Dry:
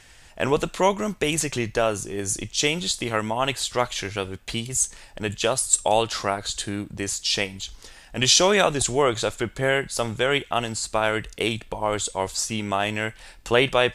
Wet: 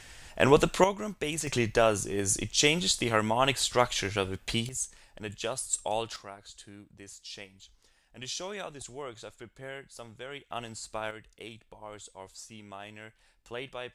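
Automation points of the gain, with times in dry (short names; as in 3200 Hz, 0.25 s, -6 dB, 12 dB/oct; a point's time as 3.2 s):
+1 dB
from 0.84 s -9 dB
from 1.47 s -1.5 dB
from 4.69 s -11 dB
from 6.16 s -20 dB
from 10.5 s -13 dB
from 11.11 s -20 dB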